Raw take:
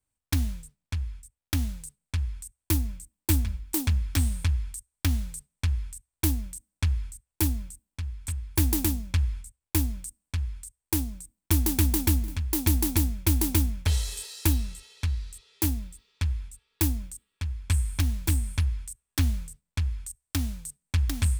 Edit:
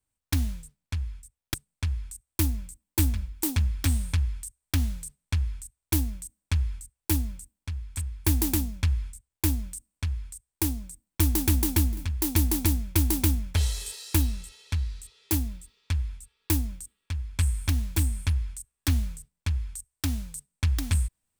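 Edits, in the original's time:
1.54–1.85 s: delete

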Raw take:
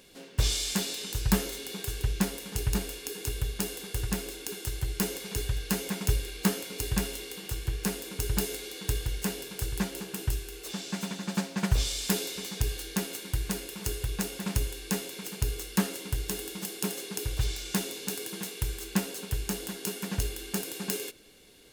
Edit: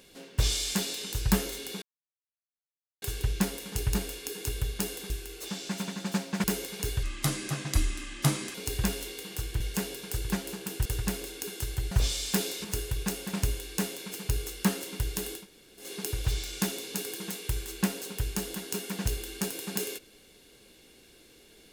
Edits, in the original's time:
1.82 s: insert silence 1.20 s
3.90–4.96 s: swap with 10.33–11.67 s
5.55–6.67 s: speed 74%
7.73–9.08 s: delete
12.40–13.77 s: delete
16.53–16.97 s: room tone, crossfade 0.16 s

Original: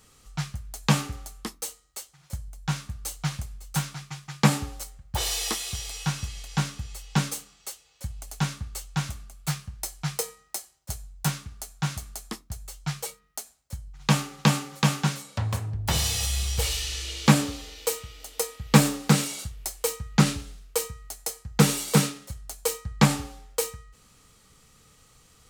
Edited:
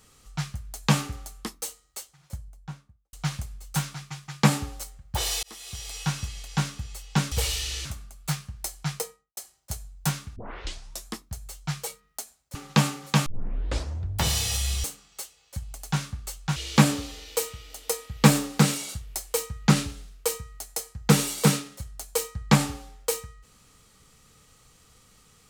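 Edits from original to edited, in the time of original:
1.98–3.13 s: studio fade out
5.43–5.98 s: fade in
7.32–9.04 s: swap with 16.53–17.06 s
10.09–10.56 s: studio fade out
11.55 s: tape start 0.72 s
13.74–14.24 s: delete
14.95 s: tape start 0.93 s

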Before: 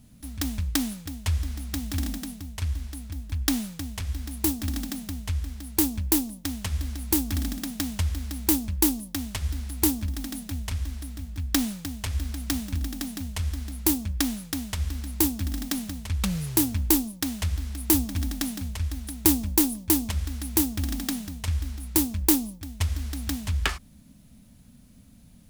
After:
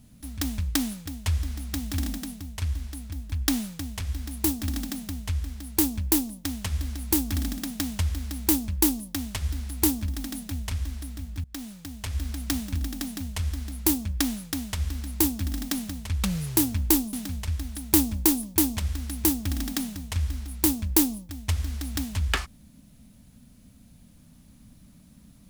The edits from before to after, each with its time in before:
11.44–12.29 s: fade in linear, from -23.5 dB
17.13–18.45 s: delete

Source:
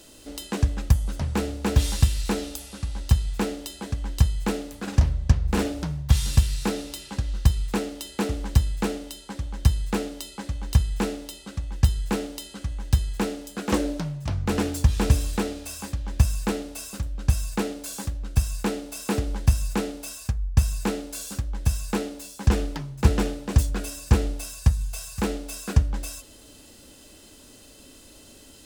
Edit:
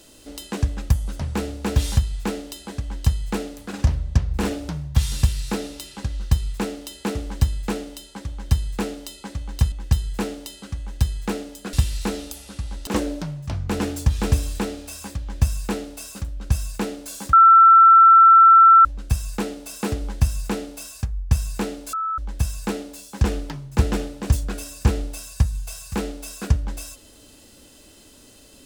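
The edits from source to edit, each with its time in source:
1.97–3.11 s: move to 13.65 s
10.86–11.64 s: delete
18.11 s: add tone 1.34 kHz -7 dBFS 1.52 s
21.19–21.44 s: bleep 1.31 kHz -22 dBFS

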